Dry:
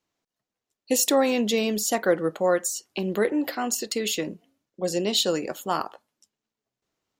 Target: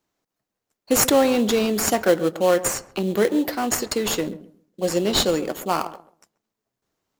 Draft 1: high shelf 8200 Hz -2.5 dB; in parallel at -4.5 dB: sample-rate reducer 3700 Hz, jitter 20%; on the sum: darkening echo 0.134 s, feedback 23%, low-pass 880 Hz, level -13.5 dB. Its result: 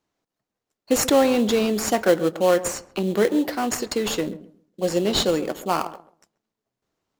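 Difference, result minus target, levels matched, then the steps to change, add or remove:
8000 Hz band -3.0 dB
change: high shelf 8200 Hz +7 dB

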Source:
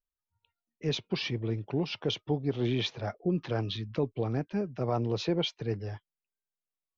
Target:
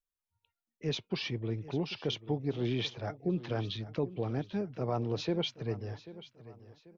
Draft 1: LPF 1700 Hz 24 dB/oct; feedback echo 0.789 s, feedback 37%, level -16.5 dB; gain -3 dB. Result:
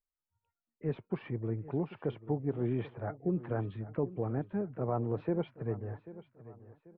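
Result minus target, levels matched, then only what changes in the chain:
2000 Hz band -6.0 dB
remove: LPF 1700 Hz 24 dB/oct

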